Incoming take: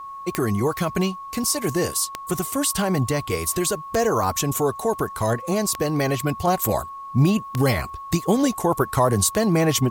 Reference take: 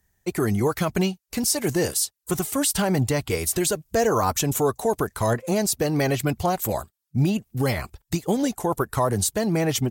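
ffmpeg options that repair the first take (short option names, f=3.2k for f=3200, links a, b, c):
-af "adeclick=t=4,bandreject=f=1.1k:w=30,agate=range=-21dB:threshold=-28dB,asetnsamples=n=441:p=0,asendcmd='6.47 volume volume -3.5dB',volume=0dB"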